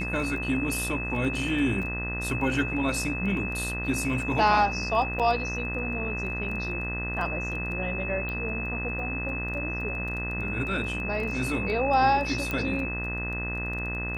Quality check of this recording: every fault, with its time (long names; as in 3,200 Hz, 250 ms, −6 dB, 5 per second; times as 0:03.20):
mains buzz 60 Hz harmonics 34 −34 dBFS
surface crackle 11 per second −34 dBFS
whistle 2,600 Hz −32 dBFS
0:05.19–0:05.20: drop-out 6.8 ms
0:08.29: click −22 dBFS
0:12.51: click −15 dBFS